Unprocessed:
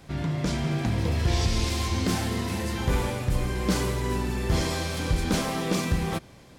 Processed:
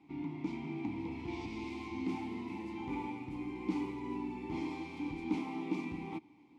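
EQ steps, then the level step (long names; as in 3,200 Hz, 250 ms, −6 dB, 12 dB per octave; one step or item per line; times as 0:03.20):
formant filter u
+1.0 dB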